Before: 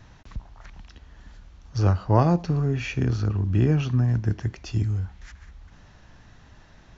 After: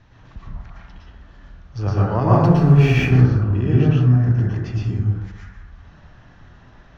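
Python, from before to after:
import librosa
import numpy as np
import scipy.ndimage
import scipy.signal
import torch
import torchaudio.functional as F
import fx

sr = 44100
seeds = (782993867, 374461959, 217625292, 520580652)

y = scipy.signal.sosfilt(scipy.signal.butter(2, 4500.0, 'lowpass', fs=sr, output='sos'), x)
y = fx.leveller(y, sr, passes=2, at=(2.34, 3.1))
y = fx.rev_plate(y, sr, seeds[0], rt60_s=1.0, hf_ratio=0.35, predelay_ms=100, drr_db=-6.5)
y = y * librosa.db_to_amplitude(-3.0)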